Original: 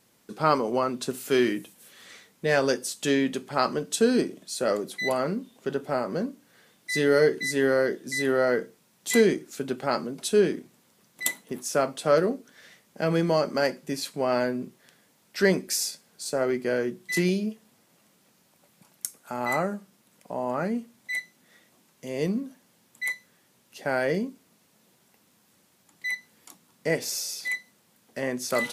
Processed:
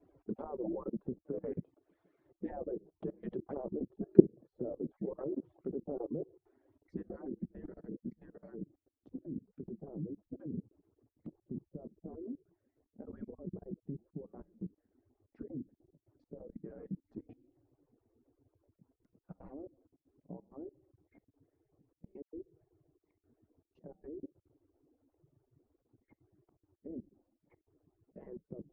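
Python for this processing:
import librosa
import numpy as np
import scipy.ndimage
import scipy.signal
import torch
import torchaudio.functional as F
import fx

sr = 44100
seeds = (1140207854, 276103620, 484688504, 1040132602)

y = fx.hpss_only(x, sr, part='percussive')
y = fx.env_lowpass_down(y, sr, base_hz=370.0, full_db=-28.5)
y = fx.level_steps(y, sr, step_db=24)
y = fx.filter_sweep_lowpass(y, sr, from_hz=450.0, to_hz=220.0, start_s=6.09, end_s=7.81, q=0.78)
y = fx.dispersion(y, sr, late='lows', ms=113.0, hz=2100.0, at=(22.22, 23.11))
y = y * librosa.db_to_amplitude(13.0)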